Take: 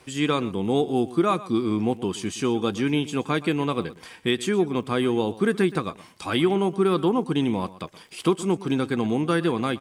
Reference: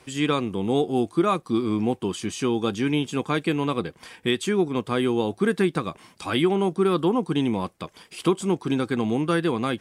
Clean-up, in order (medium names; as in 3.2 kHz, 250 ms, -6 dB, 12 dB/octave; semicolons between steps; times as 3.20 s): de-click; inverse comb 121 ms -17.5 dB